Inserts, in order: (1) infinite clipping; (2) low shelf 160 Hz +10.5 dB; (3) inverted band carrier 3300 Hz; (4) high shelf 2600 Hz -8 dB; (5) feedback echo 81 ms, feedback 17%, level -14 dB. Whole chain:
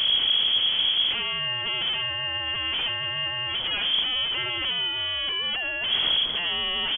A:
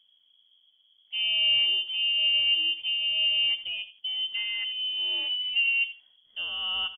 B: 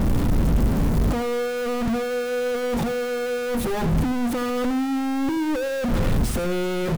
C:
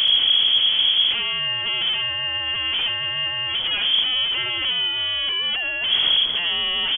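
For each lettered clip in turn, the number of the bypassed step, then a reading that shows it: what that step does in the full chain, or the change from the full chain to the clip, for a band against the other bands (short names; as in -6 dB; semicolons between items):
1, momentary loudness spread change +4 LU; 3, 2 kHz band -23.5 dB; 4, 2 kHz band +3.5 dB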